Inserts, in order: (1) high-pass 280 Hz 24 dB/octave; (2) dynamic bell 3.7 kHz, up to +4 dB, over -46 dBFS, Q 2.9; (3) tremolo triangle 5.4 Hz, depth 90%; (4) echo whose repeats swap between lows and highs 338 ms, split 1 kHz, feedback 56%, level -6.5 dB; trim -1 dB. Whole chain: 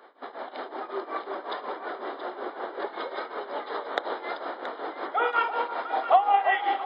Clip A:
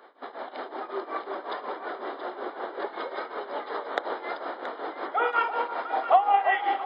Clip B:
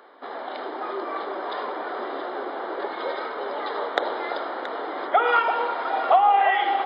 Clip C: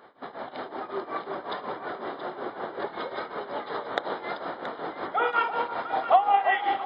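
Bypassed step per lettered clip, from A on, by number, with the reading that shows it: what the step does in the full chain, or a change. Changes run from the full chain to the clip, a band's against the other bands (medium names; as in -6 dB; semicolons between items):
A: 2, 4 kHz band -2.0 dB; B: 3, loudness change +4.0 LU; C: 1, 250 Hz band +2.0 dB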